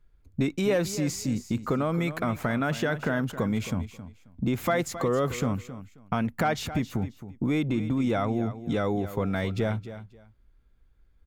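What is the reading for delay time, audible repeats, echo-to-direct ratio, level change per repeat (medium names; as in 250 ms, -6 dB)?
268 ms, 2, -13.0 dB, -13.5 dB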